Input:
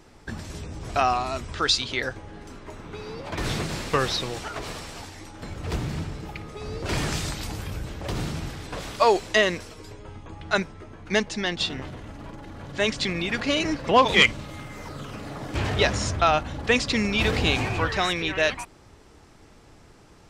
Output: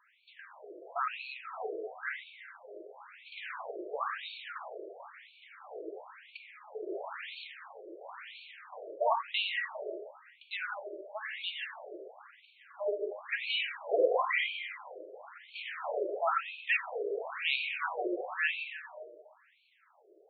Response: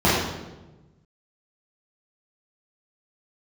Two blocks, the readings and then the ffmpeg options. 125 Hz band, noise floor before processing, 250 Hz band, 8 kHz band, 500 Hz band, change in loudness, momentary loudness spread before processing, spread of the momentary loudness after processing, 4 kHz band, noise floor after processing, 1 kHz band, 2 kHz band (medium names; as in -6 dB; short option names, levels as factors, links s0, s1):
under -40 dB, -52 dBFS, -19.5 dB, under -40 dB, -8.5 dB, -10.5 dB, 19 LU, 19 LU, -12.5 dB, -64 dBFS, -10.5 dB, -8.5 dB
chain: -filter_complex "[0:a]asubboost=boost=3.5:cutoff=180,asplit=2[s0][s1];[1:a]atrim=start_sample=2205,asetrate=22491,aresample=44100[s2];[s1][s2]afir=irnorm=-1:irlink=0,volume=0.0596[s3];[s0][s3]amix=inputs=2:normalize=0,afftfilt=real='re*between(b*sr/1024,460*pow(3200/460,0.5+0.5*sin(2*PI*0.98*pts/sr))/1.41,460*pow(3200/460,0.5+0.5*sin(2*PI*0.98*pts/sr))*1.41)':imag='im*between(b*sr/1024,460*pow(3200/460,0.5+0.5*sin(2*PI*0.98*pts/sr))/1.41,460*pow(3200/460,0.5+0.5*sin(2*PI*0.98*pts/sr))*1.41)':win_size=1024:overlap=0.75,volume=0.501"